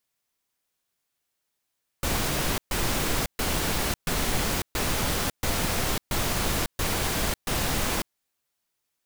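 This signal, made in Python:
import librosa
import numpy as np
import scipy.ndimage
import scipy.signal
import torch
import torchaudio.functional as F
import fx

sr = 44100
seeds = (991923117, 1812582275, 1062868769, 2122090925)

y = fx.noise_burst(sr, seeds[0], colour='pink', on_s=0.55, off_s=0.13, bursts=9, level_db=-26.0)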